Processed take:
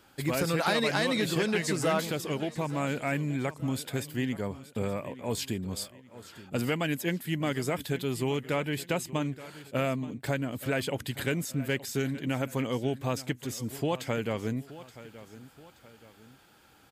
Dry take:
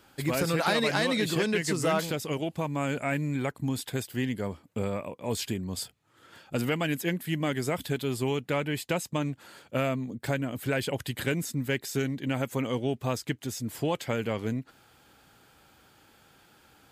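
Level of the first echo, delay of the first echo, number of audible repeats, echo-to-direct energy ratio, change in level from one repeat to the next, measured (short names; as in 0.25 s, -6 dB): -16.5 dB, 0.875 s, 2, -16.0 dB, -7.5 dB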